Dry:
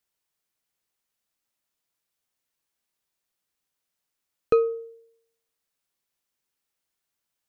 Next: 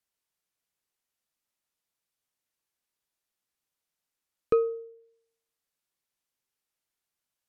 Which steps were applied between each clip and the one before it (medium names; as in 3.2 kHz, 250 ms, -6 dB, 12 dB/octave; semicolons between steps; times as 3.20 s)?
low-pass that closes with the level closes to 1.9 kHz, closed at -32.5 dBFS; trim -3.5 dB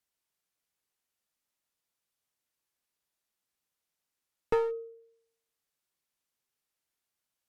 one-sided clip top -31 dBFS; endings held to a fixed fall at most 150 dB/s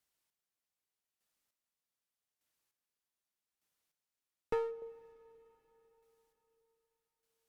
square tremolo 0.83 Hz, depth 60%, duty 25%; reverberation RT60 4.6 s, pre-delay 33 ms, DRR 17.5 dB; trim +1 dB